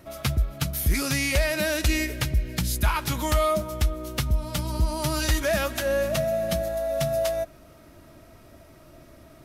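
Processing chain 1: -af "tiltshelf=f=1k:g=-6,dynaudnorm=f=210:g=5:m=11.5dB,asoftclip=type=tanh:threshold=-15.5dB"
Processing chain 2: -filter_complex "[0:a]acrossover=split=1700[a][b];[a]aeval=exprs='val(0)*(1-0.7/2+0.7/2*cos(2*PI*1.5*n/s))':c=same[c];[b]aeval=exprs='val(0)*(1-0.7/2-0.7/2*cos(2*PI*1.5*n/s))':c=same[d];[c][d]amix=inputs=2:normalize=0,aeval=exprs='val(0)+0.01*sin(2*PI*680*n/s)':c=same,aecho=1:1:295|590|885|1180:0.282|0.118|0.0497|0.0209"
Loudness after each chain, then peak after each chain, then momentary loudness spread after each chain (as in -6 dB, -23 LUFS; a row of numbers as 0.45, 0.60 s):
-21.0, -29.0 LUFS; -15.5, -13.0 dBFS; 21, 18 LU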